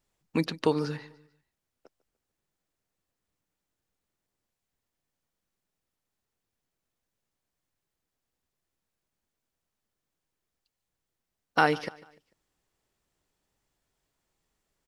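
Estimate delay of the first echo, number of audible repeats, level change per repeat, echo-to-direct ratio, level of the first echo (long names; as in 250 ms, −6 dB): 148 ms, 2, −7.5 dB, −20.0 dB, −21.0 dB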